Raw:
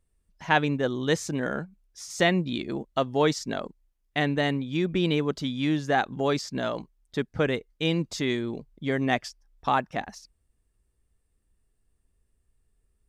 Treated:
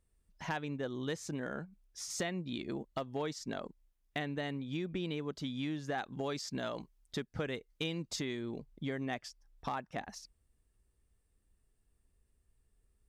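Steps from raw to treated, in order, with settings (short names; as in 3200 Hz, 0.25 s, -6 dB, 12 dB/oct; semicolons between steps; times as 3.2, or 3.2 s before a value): compressor 4:1, threshold -34 dBFS, peak gain reduction 15 dB; 5.95–8.16 high shelf 2300 Hz +4 dB; one-sided clip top -27 dBFS, bottom -22 dBFS; gain -2 dB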